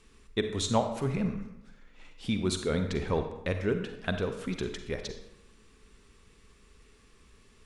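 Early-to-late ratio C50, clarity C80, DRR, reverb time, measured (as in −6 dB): 7.5 dB, 10.0 dB, 6.5 dB, 0.90 s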